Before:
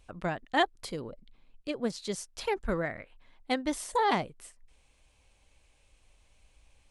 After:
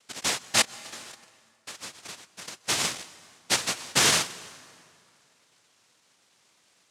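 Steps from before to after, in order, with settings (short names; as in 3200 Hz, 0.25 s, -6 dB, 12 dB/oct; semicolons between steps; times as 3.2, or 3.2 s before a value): Chebyshev low-pass 5300 Hz, order 2; bell 350 Hz -13.5 dB 0.4 oct; 0.61–2.67 compressor 10:1, threshold -45 dBFS, peak gain reduction 21 dB; noise vocoder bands 1; plate-style reverb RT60 2.3 s, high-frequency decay 0.75×, pre-delay 0.115 s, DRR 18.5 dB; gain +6.5 dB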